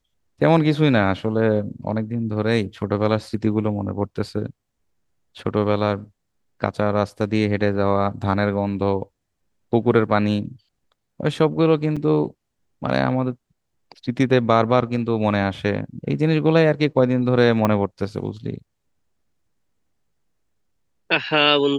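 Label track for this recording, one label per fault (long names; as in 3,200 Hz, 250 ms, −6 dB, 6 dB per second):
11.960000	11.970000	drop-out 5.7 ms
17.650000	17.650000	click −7 dBFS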